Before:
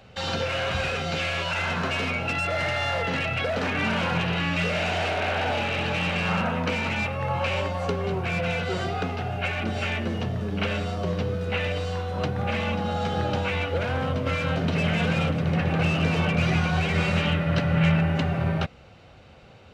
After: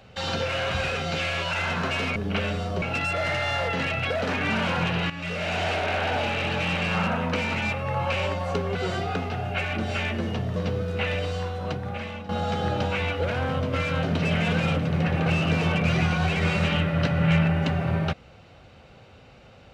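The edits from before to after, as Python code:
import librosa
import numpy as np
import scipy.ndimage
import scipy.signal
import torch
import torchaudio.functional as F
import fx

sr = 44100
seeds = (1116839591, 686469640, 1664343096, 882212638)

y = fx.edit(x, sr, fx.fade_in_from(start_s=4.44, length_s=0.52, floor_db=-12.5),
    fx.cut(start_s=8.09, length_s=0.53),
    fx.move(start_s=10.43, length_s=0.66, to_s=2.16),
    fx.fade_out_to(start_s=11.91, length_s=0.91, floor_db=-12.5), tone=tone)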